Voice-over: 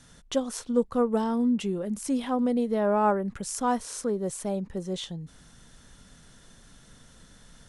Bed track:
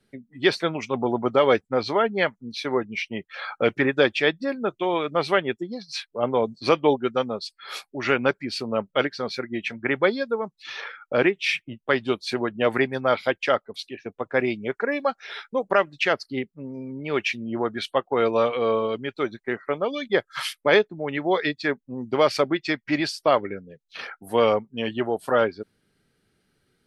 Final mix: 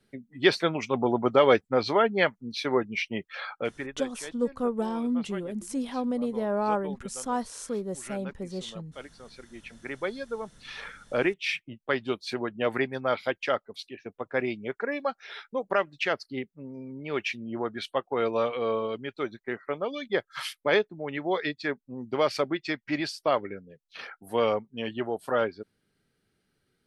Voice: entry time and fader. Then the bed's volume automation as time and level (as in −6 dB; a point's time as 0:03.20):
3.65 s, −3.5 dB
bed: 0:03.36 −1 dB
0:04.03 −20.5 dB
0:09.15 −20.5 dB
0:10.62 −5.5 dB